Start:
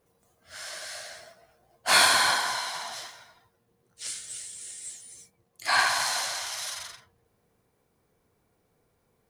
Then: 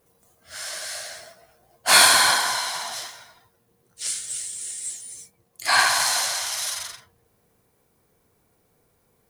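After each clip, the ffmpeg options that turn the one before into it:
-af "highshelf=f=7.2k:g=7.5,volume=4dB"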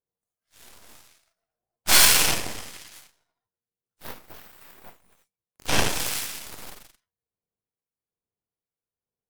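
-filter_complex "[0:a]aeval=exprs='0.891*(cos(1*acos(clip(val(0)/0.891,-1,1)))-cos(1*PI/2))+0.00891*(cos(5*acos(clip(val(0)/0.891,-1,1)))-cos(5*PI/2))+0.398*(cos(6*acos(clip(val(0)/0.891,-1,1)))-cos(6*PI/2))+0.141*(cos(7*acos(clip(val(0)/0.891,-1,1)))-cos(7*PI/2))':c=same,acrossover=split=1300[a][b];[a]aeval=exprs='val(0)*(1-0.5/2+0.5/2*cos(2*PI*1.2*n/s))':c=same[c];[b]aeval=exprs='val(0)*(1-0.5/2-0.5/2*cos(2*PI*1.2*n/s))':c=same[d];[c][d]amix=inputs=2:normalize=0,volume=-4dB"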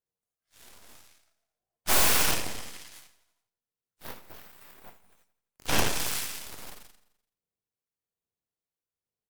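-filter_complex "[0:a]acrossover=split=1100[a][b];[b]aeval=exprs='(mod(5.31*val(0)+1,2)-1)/5.31':c=same[c];[a][c]amix=inputs=2:normalize=0,aecho=1:1:85|170|255|340|425:0.133|0.0787|0.0464|0.0274|0.0162,volume=-3dB"

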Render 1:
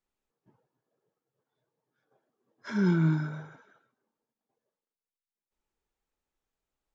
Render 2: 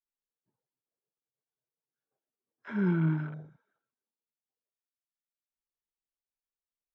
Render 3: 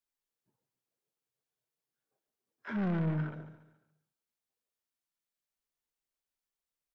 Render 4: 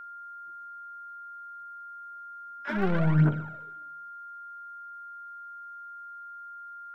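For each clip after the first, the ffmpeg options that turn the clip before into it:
-af "lowpass=5.2k,afwtdn=0.00794,volume=-2.5dB"
-filter_complex "[0:a]asoftclip=type=tanh:threshold=-31.5dB,asplit=2[a][b];[b]aecho=0:1:141|282|423|564:0.237|0.0949|0.0379|0.0152[c];[a][c]amix=inputs=2:normalize=0,volume=2.5dB"
-af "aphaser=in_gain=1:out_gain=1:delay=4.8:decay=0.7:speed=0.61:type=triangular,aeval=exprs='val(0)+0.00447*sin(2*PI*1400*n/s)':c=same,volume=6.5dB"

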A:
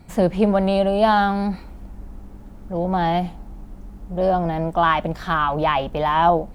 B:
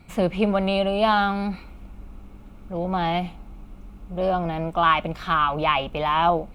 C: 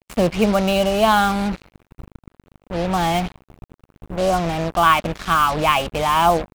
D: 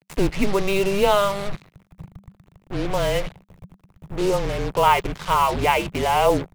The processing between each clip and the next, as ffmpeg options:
-af "superequalizer=10b=1.78:12b=2.82:13b=1.78,volume=-4dB"
-af "aeval=exprs='val(0)+0.00794*(sin(2*PI*50*n/s)+sin(2*PI*2*50*n/s)/2+sin(2*PI*3*50*n/s)/3+sin(2*PI*4*50*n/s)/4+sin(2*PI*5*50*n/s)/5)':c=same,acrusher=bits=4:mix=0:aa=0.5,volume=4dB"
-af "afreqshift=-200,volume=-2dB"

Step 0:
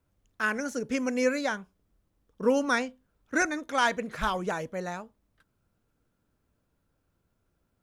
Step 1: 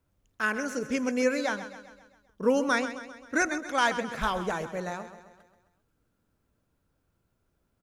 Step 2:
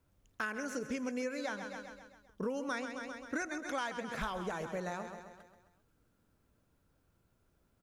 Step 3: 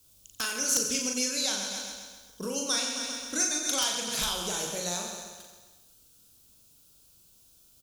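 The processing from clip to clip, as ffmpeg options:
-af "aecho=1:1:132|264|396|528|660|792:0.251|0.133|0.0706|0.0374|0.0198|0.0105"
-af "acompressor=threshold=-36dB:ratio=6,volume=1dB"
-af "aexciter=amount=9.9:drive=5.6:freq=2.9k,aecho=1:1:40|90|152.5|230.6|328.3:0.631|0.398|0.251|0.158|0.1,aeval=exprs='(mod(4.47*val(0)+1,2)-1)/4.47':c=same"

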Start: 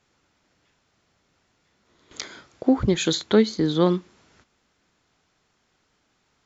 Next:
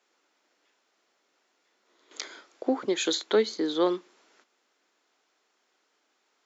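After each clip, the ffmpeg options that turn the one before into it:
-af "highpass=f=310:w=0.5412,highpass=f=310:w=1.3066,volume=-3dB"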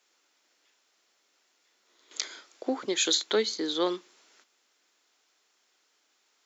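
-af "highshelf=f=2.3k:g=11,volume=-4dB"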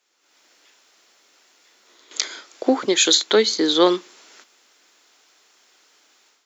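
-af "dynaudnorm=f=190:g=3:m=13dB"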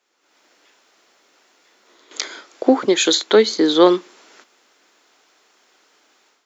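-af "highshelf=f=2.3k:g=-8.5,volume=4.5dB"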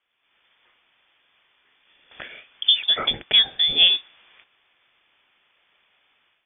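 -af "lowpass=f=3.2k:t=q:w=0.5098,lowpass=f=3.2k:t=q:w=0.6013,lowpass=f=3.2k:t=q:w=0.9,lowpass=f=3.2k:t=q:w=2.563,afreqshift=-3800,volume=-4.5dB"

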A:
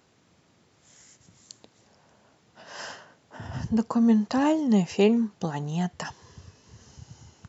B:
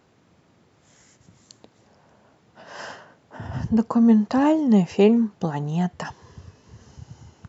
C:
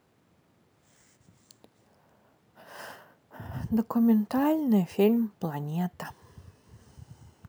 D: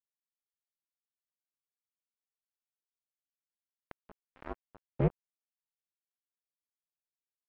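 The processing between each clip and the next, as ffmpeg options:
-af "highshelf=f=2.7k:g=-9,volume=4.5dB"
-af "acrusher=samples=3:mix=1:aa=0.000001,volume=-6.5dB"
-af "highpass=f=410:t=q:w=0.5412,highpass=f=410:t=q:w=1.307,lowpass=f=2.3k:t=q:w=0.5176,lowpass=f=2.3k:t=q:w=0.7071,lowpass=f=2.3k:t=q:w=1.932,afreqshift=-260,tiltshelf=f=680:g=6,acrusher=bits=2:mix=0:aa=0.5,volume=-5dB"

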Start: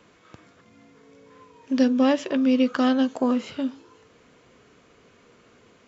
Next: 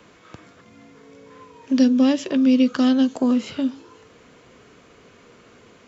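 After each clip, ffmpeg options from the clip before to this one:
-filter_complex "[0:a]acrossover=split=350|3000[a][b][c];[b]acompressor=threshold=-40dB:ratio=2[d];[a][d][c]amix=inputs=3:normalize=0,volume=5.5dB"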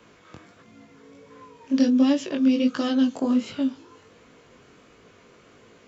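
-af "flanger=delay=17.5:depth=4.8:speed=1.4"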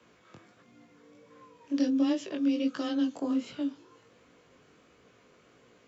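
-af "afreqshift=16,volume=-7.5dB"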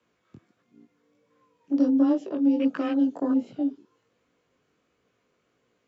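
-af "afwtdn=0.00794,volume=5.5dB"

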